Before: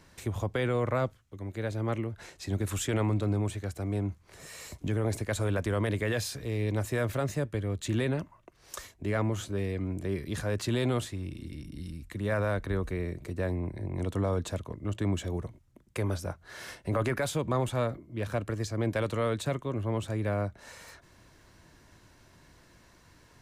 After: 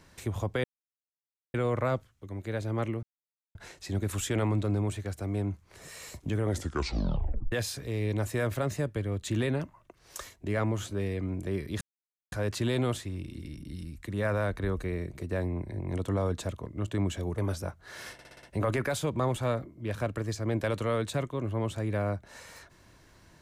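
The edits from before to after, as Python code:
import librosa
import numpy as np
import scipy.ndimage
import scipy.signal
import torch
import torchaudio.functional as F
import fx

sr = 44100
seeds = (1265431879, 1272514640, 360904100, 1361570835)

y = fx.edit(x, sr, fx.insert_silence(at_s=0.64, length_s=0.9),
    fx.insert_silence(at_s=2.13, length_s=0.52),
    fx.tape_stop(start_s=5.01, length_s=1.09),
    fx.insert_silence(at_s=10.39, length_s=0.51),
    fx.cut(start_s=15.45, length_s=0.55),
    fx.stutter(start_s=16.75, slice_s=0.06, count=6), tone=tone)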